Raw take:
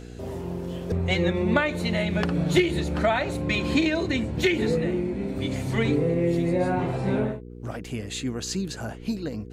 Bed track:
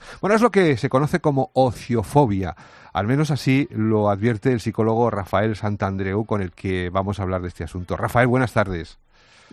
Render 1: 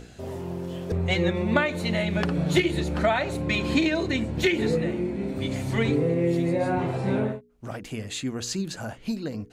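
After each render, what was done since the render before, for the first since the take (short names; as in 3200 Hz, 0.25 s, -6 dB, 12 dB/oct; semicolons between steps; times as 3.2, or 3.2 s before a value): de-hum 60 Hz, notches 8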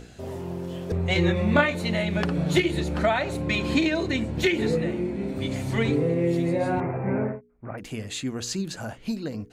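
1.13–1.75 doubler 24 ms -2 dB; 6.8–7.78 elliptic low-pass 2300 Hz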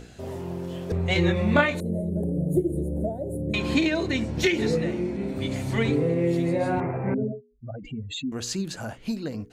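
1.8–3.54 elliptic band-stop 540–9800 Hz; 4.16–5.17 bell 5600 Hz +8 dB 0.43 oct; 7.14–8.32 spectral contrast raised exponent 2.9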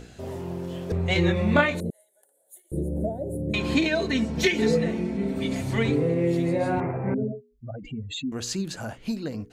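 1.9–2.72 HPF 1400 Hz 24 dB/oct; 3.84–5.61 comb 4.5 ms; 6.92–7.35 air absorption 230 m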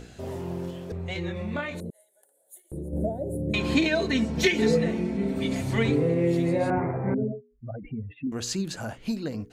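0.7–2.93 compressor 2:1, threshold -36 dBFS; 6.7–8.27 steep low-pass 2300 Hz 48 dB/oct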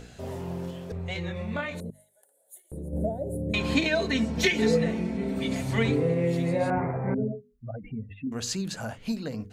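bell 340 Hz -8.5 dB 0.26 oct; notches 50/100/150/200/250 Hz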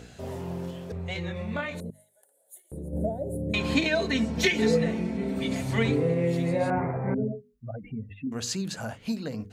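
HPF 53 Hz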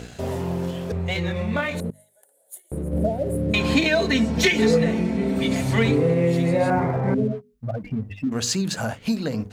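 sample leveller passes 1; in parallel at +1 dB: compressor, threshold -32 dBFS, peak gain reduction 15 dB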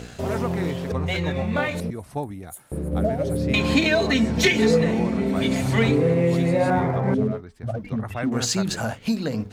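add bed track -13.5 dB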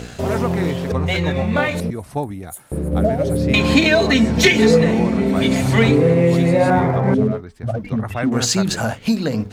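gain +5.5 dB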